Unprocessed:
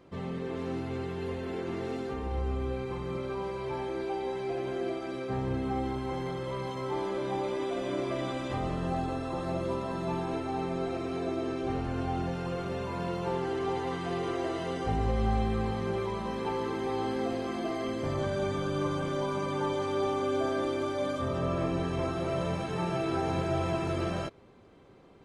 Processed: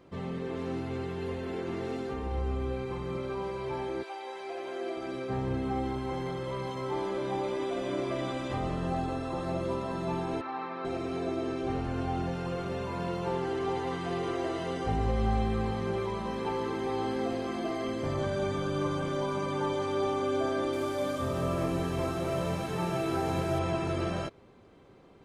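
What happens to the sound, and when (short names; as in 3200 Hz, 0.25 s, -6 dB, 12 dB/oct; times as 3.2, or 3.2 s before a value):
4.02–4.96 HPF 920 Hz -> 340 Hz
10.41–10.85 speaker cabinet 370–4000 Hz, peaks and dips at 410 Hz -9 dB, 670 Hz -6 dB, 1100 Hz +9 dB, 1700 Hz +4 dB, 3200 Hz -5 dB
20.73–23.59 delta modulation 64 kbps, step -42 dBFS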